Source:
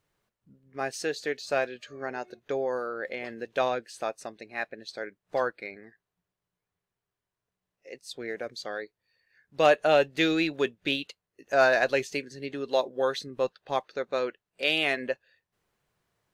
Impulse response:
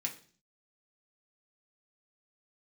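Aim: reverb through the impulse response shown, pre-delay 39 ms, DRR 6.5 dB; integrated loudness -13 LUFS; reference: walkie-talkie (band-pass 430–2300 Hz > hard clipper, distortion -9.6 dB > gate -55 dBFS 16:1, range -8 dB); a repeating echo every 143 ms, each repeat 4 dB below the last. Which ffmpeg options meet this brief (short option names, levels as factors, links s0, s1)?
-filter_complex "[0:a]aecho=1:1:143|286|429|572|715|858|1001|1144|1287:0.631|0.398|0.25|0.158|0.0994|0.0626|0.0394|0.0249|0.0157,asplit=2[s0][s1];[1:a]atrim=start_sample=2205,adelay=39[s2];[s1][s2]afir=irnorm=-1:irlink=0,volume=0.422[s3];[s0][s3]amix=inputs=2:normalize=0,highpass=430,lowpass=2300,asoftclip=type=hard:threshold=0.075,agate=range=0.398:threshold=0.00178:ratio=16,volume=7.5"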